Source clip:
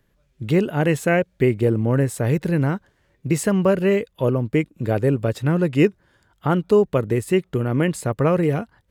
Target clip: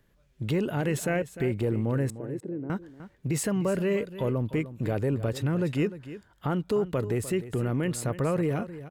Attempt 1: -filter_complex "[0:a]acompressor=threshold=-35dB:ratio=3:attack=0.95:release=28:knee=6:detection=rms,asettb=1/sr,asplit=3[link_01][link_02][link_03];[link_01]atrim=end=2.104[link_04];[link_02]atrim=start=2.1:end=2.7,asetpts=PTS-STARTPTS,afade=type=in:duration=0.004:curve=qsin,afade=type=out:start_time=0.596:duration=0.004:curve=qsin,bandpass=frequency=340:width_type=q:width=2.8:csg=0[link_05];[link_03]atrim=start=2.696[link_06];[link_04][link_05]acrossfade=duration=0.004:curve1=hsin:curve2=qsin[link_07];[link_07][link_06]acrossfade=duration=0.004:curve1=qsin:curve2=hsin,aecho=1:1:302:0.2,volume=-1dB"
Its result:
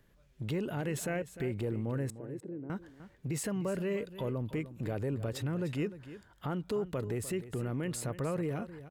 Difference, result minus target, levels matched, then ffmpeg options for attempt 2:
downward compressor: peak gain reduction +7.5 dB
-filter_complex "[0:a]acompressor=threshold=-24dB:ratio=3:attack=0.95:release=28:knee=6:detection=rms,asettb=1/sr,asplit=3[link_01][link_02][link_03];[link_01]atrim=end=2.104[link_04];[link_02]atrim=start=2.1:end=2.7,asetpts=PTS-STARTPTS,afade=type=in:duration=0.004:curve=qsin,afade=type=out:start_time=0.596:duration=0.004:curve=qsin,bandpass=frequency=340:width_type=q:width=2.8:csg=0[link_05];[link_03]atrim=start=2.696[link_06];[link_04][link_05]acrossfade=duration=0.004:curve1=hsin:curve2=qsin[link_07];[link_07][link_06]acrossfade=duration=0.004:curve1=qsin:curve2=hsin,aecho=1:1:302:0.2,volume=-1dB"

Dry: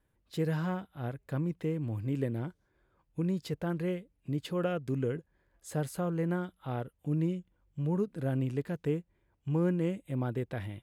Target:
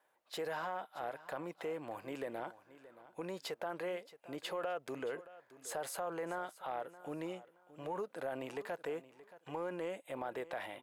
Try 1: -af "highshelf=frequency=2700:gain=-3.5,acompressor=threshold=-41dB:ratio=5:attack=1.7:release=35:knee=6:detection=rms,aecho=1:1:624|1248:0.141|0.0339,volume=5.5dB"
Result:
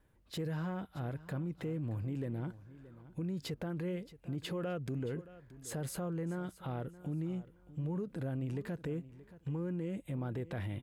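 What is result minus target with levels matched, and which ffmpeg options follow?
1,000 Hz band −10.5 dB
-af "highpass=frequency=710:width_type=q:width=2,highshelf=frequency=2700:gain=-3.5,acompressor=threshold=-41dB:ratio=5:attack=1.7:release=35:knee=6:detection=rms,aecho=1:1:624|1248:0.141|0.0339,volume=5.5dB"

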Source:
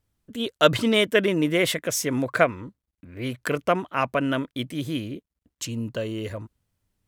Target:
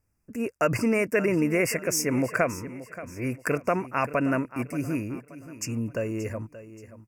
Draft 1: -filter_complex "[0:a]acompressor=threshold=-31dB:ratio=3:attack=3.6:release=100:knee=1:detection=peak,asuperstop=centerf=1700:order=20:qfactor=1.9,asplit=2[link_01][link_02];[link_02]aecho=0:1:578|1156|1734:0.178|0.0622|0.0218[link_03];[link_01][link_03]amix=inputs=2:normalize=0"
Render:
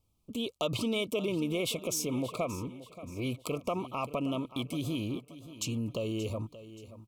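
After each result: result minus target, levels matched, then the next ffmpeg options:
4,000 Hz band +11.0 dB; downward compressor: peak gain reduction +8 dB
-filter_complex "[0:a]acompressor=threshold=-31dB:ratio=3:attack=3.6:release=100:knee=1:detection=peak,asuperstop=centerf=3600:order=20:qfactor=1.9,asplit=2[link_01][link_02];[link_02]aecho=0:1:578|1156|1734:0.178|0.0622|0.0218[link_03];[link_01][link_03]amix=inputs=2:normalize=0"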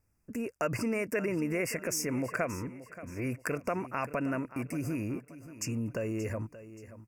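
downward compressor: peak gain reduction +8 dB
-filter_complex "[0:a]acompressor=threshold=-19dB:ratio=3:attack=3.6:release=100:knee=1:detection=peak,asuperstop=centerf=3600:order=20:qfactor=1.9,asplit=2[link_01][link_02];[link_02]aecho=0:1:578|1156|1734:0.178|0.0622|0.0218[link_03];[link_01][link_03]amix=inputs=2:normalize=0"

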